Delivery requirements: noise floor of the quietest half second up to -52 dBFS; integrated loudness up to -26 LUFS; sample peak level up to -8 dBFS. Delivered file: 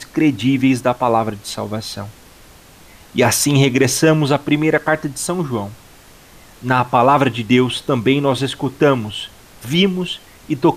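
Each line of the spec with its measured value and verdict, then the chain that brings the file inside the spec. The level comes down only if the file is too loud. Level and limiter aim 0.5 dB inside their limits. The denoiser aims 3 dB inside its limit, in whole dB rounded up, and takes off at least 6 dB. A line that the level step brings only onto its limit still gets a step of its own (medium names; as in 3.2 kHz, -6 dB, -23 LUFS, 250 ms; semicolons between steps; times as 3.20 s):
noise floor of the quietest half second -44 dBFS: fail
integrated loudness -16.5 LUFS: fail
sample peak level -3.0 dBFS: fail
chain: trim -10 dB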